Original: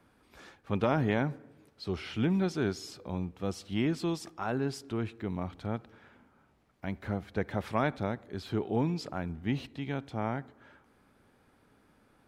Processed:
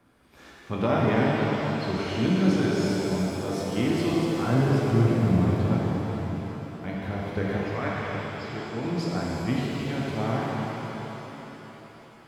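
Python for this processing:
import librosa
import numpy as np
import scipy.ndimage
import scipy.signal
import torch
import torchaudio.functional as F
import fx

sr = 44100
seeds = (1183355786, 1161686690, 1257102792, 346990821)

y = fx.bass_treble(x, sr, bass_db=11, treble_db=-10, at=(4.13, 5.49))
y = fx.cheby_ripple(y, sr, hz=7000.0, ripple_db=9, at=(7.57, 8.85))
y = fx.rev_shimmer(y, sr, seeds[0], rt60_s=3.9, semitones=7, shimmer_db=-8, drr_db=-5.5)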